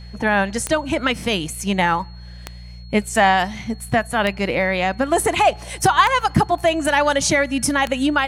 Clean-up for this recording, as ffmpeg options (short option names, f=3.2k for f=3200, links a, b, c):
-af "adeclick=t=4,bandreject=f=59.5:t=h:w=4,bandreject=f=119:t=h:w=4,bandreject=f=178.5:t=h:w=4,bandreject=f=4.3k:w=30"